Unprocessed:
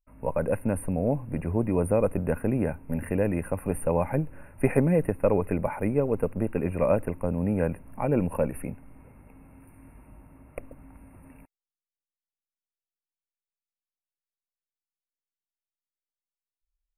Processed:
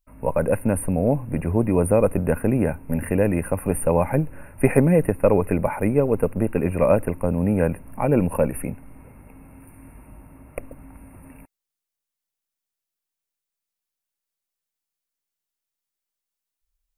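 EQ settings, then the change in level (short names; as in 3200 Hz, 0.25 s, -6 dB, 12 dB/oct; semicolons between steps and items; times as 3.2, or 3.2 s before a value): high shelf 5700 Hz +5.5 dB; +5.5 dB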